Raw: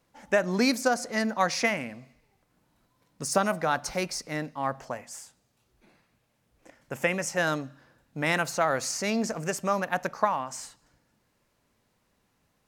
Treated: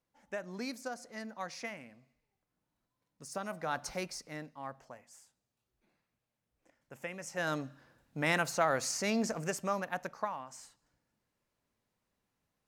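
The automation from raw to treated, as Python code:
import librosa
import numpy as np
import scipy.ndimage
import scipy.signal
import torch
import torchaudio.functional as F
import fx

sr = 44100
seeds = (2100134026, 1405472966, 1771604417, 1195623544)

y = fx.gain(x, sr, db=fx.line((3.34, -16.0), (3.82, -7.0), (4.91, -15.5), (7.14, -15.5), (7.61, -4.0), (9.34, -4.0), (10.34, -12.0)))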